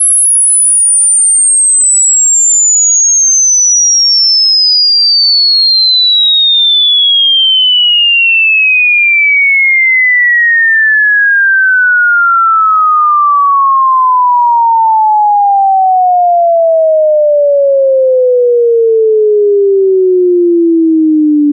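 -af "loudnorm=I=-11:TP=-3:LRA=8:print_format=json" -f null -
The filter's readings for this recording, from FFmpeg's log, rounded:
"input_i" : "-5.5",
"input_tp" : "-4.1",
"input_lra" : "4.1",
"input_thresh" : "-15.5",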